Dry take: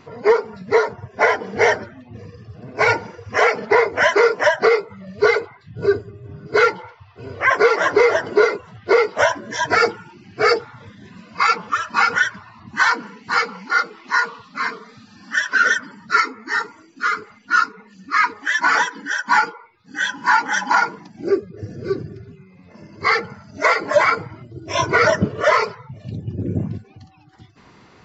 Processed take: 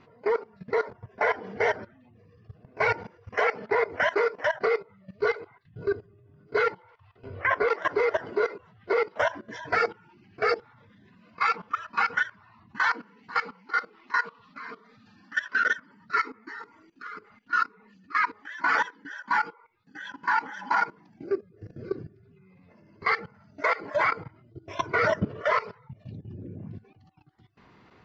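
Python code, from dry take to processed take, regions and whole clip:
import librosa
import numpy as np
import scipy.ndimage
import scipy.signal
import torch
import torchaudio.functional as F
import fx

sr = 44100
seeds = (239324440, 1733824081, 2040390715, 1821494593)

y = fx.chain(x, sr, fx.lowpass(hz=4300.0, slope=12),
    fx.low_shelf(hz=110.0, db=10.5),
    fx.doubler(ms=21.0, db=-10.0), at=(7.28, 7.68))
y = scipy.signal.sosfilt(scipy.signal.butter(2, 3700.0, 'lowpass', fs=sr, output='sos'), y)
y = fx.level_steps(y, sr, step_db=17)
y = y * librosa.db_to_amplitude(-5.5)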